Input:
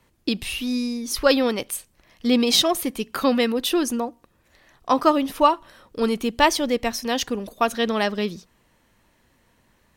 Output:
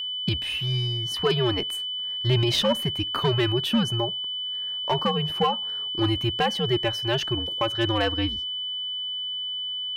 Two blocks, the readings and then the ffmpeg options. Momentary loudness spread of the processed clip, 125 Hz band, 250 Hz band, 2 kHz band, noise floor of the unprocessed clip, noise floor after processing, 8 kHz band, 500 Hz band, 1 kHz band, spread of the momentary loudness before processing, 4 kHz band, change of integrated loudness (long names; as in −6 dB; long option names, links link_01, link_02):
5 LU, +15.5 dB, −5.5 dB, −4.0 dB, −63 dBFS, −31 dBFS, −12.5 dB, −4.0 dB, −6.0 dB, 10 LU, +5.0 dB, −2.5 dB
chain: -af "highpass=frequency=100:poles=1,bass=frequency=250:gain=-3,treble=frequency=4000:gain=-13,bandreject=frequency=2400:width=25,alimiter=limit=-12dB:level=0:latency=1:release=248,afreqshift=-120,volume=16dB,asoftclip=hard,volume=-16dB,aeval=exprs='val(0)+0.0398*sin(2*PI*3000*n/s)':channel_layout=same"